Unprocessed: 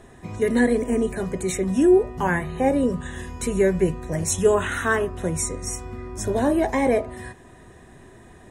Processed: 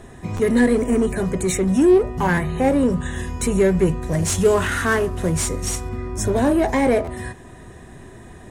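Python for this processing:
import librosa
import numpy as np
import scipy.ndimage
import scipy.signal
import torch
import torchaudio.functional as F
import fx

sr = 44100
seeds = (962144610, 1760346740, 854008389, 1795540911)

p1 = fx.cvsd(x, sr, bps=64000, at=(4.03, 5.89))
p2 = np.clip(p1, -10.0 ** (-25.5 / 20.0), 10.0 ** (-25.5 / 20.0))
p3 = p1 + (p2 * librosa.db_to_amplitude(-3.0))
p4 = fx.bass_treble(p3, sr, bass_db=3, treble_db=1)
y = fx.buffer_glitch(p4, sr, at_s=(0.36, 2.34, 7.04), block=512, repeats=2)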